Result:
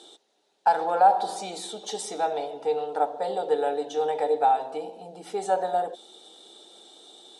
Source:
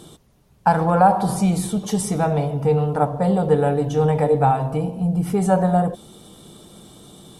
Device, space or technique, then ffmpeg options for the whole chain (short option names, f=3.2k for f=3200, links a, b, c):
phone speaker on a table: -af "highpass=f=480:w=0.5412,highpass=f=480:w=1.3066,equalizer=f=800:t=q:w=4:g=6,equalizer=f=1.1k:t=q:w=4:g=-9,equalizer=f=2.2k:t=q:w=4:g=-3,equalizer=f=3.8k:t=q:w=4:g=9,lowpass=f=8.5k:w=0.5412,lowpass=f=8.5k:w=1.3066,lowshelf=f=430:t=q:w=1.5:g=7,volume=-4.5dB"